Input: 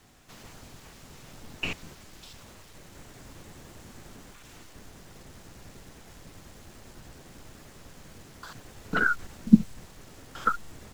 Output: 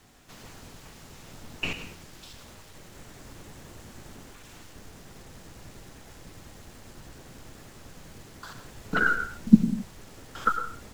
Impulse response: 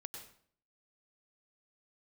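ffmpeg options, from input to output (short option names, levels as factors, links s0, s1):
-filter_complex "[0:a]asplit=2[s0][s1];[1:a]atrim=start_sample=2205,afade=t=out:st=0.32:d=0.01,atrim=end_sample=14553[s2];[s1][s2]afir=irnorm=-1:irlink=0,volume=2.24[s3];[s0][s3]amix=inputs=2:normalize=0,volume=0.501"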